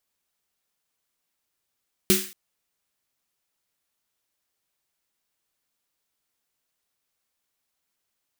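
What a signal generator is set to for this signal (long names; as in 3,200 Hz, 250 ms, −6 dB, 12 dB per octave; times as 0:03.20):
synth snare length 0.23 s, tones 200 Hz, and 370 Hz, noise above 1,500 Hz, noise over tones −0.5 dB, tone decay 0.28 s, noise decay 0.45 s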